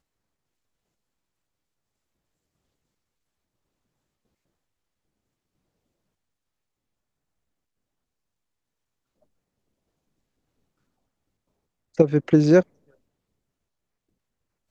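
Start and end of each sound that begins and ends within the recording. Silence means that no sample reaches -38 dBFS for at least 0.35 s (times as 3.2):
11.98–12.63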